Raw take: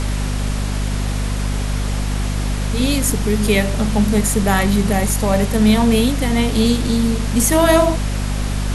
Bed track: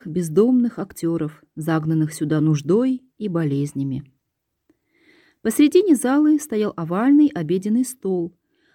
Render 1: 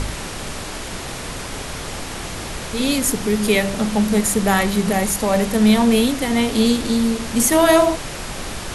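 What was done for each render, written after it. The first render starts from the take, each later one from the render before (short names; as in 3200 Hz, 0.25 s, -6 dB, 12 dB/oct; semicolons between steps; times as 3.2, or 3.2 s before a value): de-hum 50 Hz, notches 5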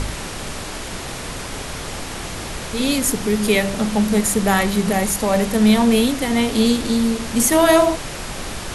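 nothing audible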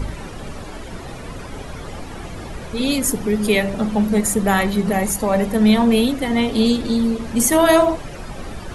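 denoiser 13 dB, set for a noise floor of -30 dBFS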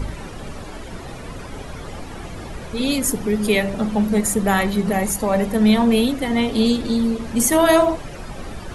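gain -1 dB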